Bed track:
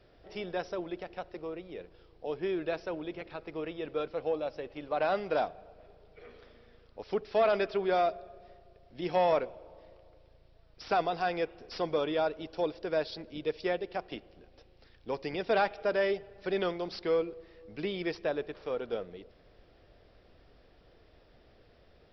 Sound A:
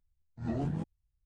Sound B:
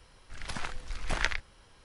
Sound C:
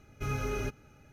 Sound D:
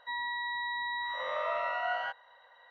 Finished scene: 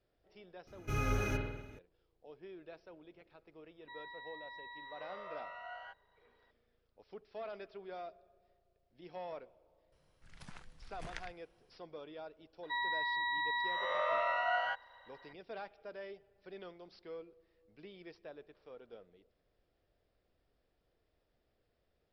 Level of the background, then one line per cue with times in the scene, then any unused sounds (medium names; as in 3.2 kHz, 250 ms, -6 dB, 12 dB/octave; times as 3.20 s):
bed track -18.5 dB
0.67 s: add C -2 dB + spring tank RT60 1 s, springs 49 ms, chirp 20 ms, DRR 0.5 dB
3.81 s: add D -15 dB
9.92 s: add B -17.5 dB + peaking EQ 160 Hz +11 dB
12.63 s: add D -0.5 dB
not used: A